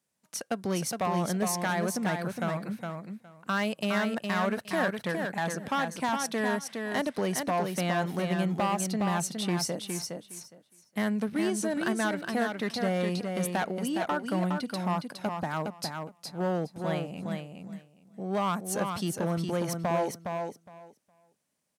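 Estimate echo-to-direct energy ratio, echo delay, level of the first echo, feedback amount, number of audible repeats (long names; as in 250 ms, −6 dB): −5.0 dB, 413 ms, −5.0 dB, 16%, 2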